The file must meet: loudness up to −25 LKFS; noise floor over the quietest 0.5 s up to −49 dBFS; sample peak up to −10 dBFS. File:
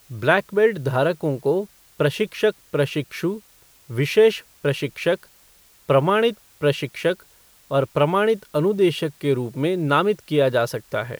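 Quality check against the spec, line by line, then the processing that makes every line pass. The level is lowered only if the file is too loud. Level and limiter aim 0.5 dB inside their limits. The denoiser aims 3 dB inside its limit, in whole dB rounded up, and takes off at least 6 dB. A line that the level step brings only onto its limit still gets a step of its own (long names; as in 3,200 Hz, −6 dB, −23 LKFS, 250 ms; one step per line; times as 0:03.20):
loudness −21.5 LKFS: out of spec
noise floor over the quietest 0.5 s −54 dBFS: in spec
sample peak −3.0 dBFS: out of spec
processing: level −4 dB
brickwall limiter −10.5 dBFS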